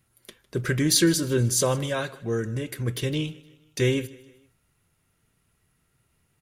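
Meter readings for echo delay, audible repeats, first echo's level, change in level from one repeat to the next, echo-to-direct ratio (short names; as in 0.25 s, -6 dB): 0.155 s, 3, -21.0 dB, -6.5 dB, -20.0 dB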